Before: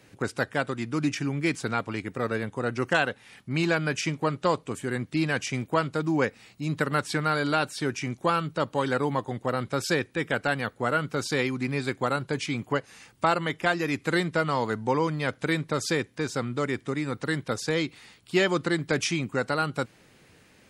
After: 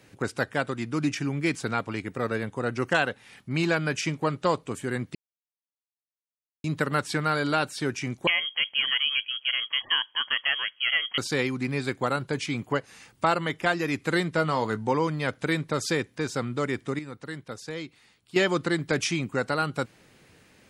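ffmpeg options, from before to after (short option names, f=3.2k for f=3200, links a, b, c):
-filter_complex "[0:a]asettb=1/sr,asplit=3[a][b][c];[a]atrim=end=8.274[d];[b]atrim=start=8.27:end=11.18,asetpts=PTS-STARTPTS,afade=t=in:d=0.004:c=qsin,afade=t=out:st=2.906:d=0.004:c=qsin,lowpass=f=2.9k:t=q:w=0.5098,lowpass=f=2.9k:t=q:w=0.6013,lowpass=f=2.9k:t=q:w=0.9,lowpass=f=2.9k:t=q:w=2.563,afreqshift=-3400[e];[c]atrim=start=11.176[f];[d][e]acrossfade=d=0.004:c1=hsin:c2=qsin[g];[g][f]acrossfade=d=0.004:c1=qsin:c2=hsin,asettb=1/sr,asplit=3[h][i][j];[h]atrim=end=14.344[k];[i]atrim=start=14.34:end=14.93,asetpts=PTS-STARTPTS,afade=t=in:d=0.004:c=qsin,afade=t=out:st=0.586:d=0.004:c=qsin,asplit=2[l][m];[m]adelay=19,volume=-12.5dB[n];[l][n]amix=inputs=2:normalize=0,atrim=end_sample=26019[o];[j]atrim=start=14.926[p];[k][o]acrossfade=d=0.004:c1=hsin:c2=qsin[q];[q][p]acrossfade=d=0.004:c1=qsin:c2=hsin,asplit=5[r][s][t][u][v];[r]atrim=end=5.15,asetpts=PTS-STARTPTS,afade=t=out:st=5.146:d=0.004:c=hsin[w];[s]atrim=start=5.15:end=6.64,asetpts=PTS-STARTPTS,volume=0[x];[t]atrim=start=6.64:end=16.992,asetpts=PTS-STARTPTS,afade=t=in:d=0.004:c=hsin[y];[u]atrim=start=16.988:end=18.362,asetpts=PTS-STARTPTS,volume=-9dB[z];[v]atrim=start=18.358[aa];[w][x][y]concat=n=3:v=0:a=1[ab];[ab][z]acrossfade=d=0.004:c1=hsin:c2=hsin[ac];[ac][aa]acrossfade=d=0.004:c1=hsin:c2=hsin"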